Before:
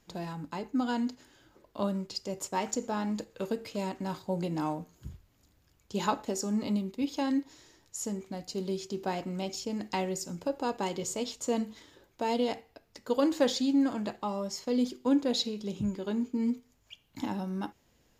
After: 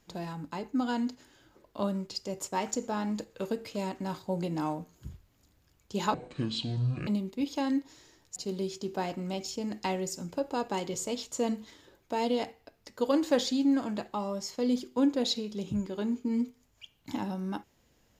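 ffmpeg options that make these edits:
-filter_complex "[0:a]asplit=4[a][b][c][d];[a]atrim=end=6.144[e];[b]atrim=start=6.14:end=6.68,asetpts=PTS-STARTPTS,asetrate=25578,aresample=44100[f];[c]atrim=start=6.676:end=7.972[g];[d]atrim=start=8.448[h];[e][f]acrossfade=d=0.004:c1=hsin:c2=hsin[i];[i][g]acrossfade=d=0.004:c1=hsin:c2=hsin[j];[j][h]acrossfade=d=0.004:c1=hsin:c2=hsin"

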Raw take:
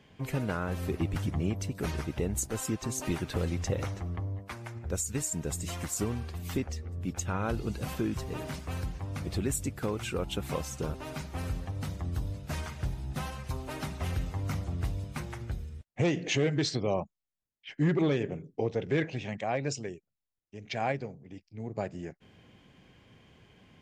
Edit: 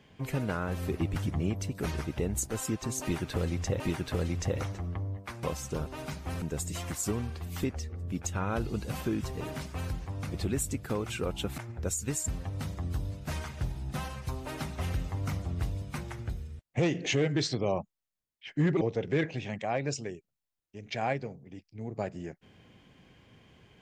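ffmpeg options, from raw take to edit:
-filter_complex "[0:a]asplit=7[a][b][c][d][e][f][g];[a]atrim=end=3.802[h];[b]atrim=start=3.018:end=4.652[i];[c]atrim=start=10.508:end=11.502[j];[d]atrim=start=5.348:end=10.512[k];[e]atrim=start=4.648:end=5.352[l];[f]atrim=start=11.498:end=18.032[m];[g]atrim=start=18.598[n];[h][i]acrossfade=d=0.004:c1=hsin:c2=hsin[o];[o][j]acrossfade=d=0.004:c1=hsin:c2=hsin[p];[p][k]acrossfade=d=0.004:c1=hsin:c2=hsin[q];[q][l]acrossfade=d=0.004:c1=hsin:c2=hsin[r];[r][m]acrossfade=d=0.004:c1=hsin:c2=hsin[s];[s][n]acrossfade=d=0.004:c1=hsin:c2=hsin"

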